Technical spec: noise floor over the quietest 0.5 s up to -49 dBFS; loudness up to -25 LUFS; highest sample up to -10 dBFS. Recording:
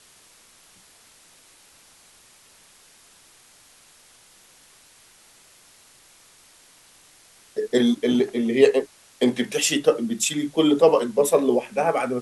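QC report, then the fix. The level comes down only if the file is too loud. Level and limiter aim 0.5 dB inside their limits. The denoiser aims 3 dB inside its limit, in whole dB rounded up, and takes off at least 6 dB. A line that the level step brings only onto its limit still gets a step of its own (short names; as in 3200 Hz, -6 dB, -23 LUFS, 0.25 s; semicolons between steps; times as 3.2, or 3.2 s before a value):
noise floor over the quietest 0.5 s -54 dBFS: OK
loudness -21.0 LUFS: fail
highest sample -4.5 dBFS: fail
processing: gain -4.5 dB; limiter -10.5 dBFS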